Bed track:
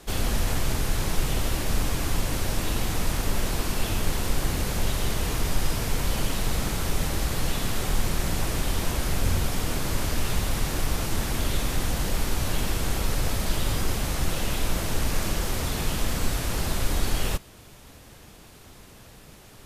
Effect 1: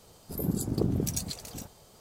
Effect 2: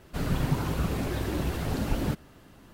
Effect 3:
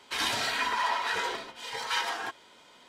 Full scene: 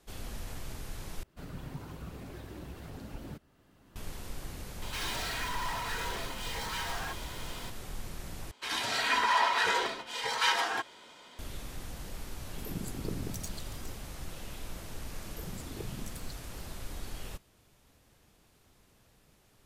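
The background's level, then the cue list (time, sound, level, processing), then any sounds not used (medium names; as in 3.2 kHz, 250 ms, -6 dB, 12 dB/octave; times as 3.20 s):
bed track -16 dB
1.23 s: replace with 2 -15.5 dB + recorder AGC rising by 14 dB/s
4.82 s: add 3 -15 dB + power-law waveshaper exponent 0.35
8.51 s: replace with 3 -5.5 dB + level rider gain up to 8 dB
12.27 s: add 1 -10 dB
14.99 s: add 1 -12.5 dB + barber-pole phaser +2.6 Hz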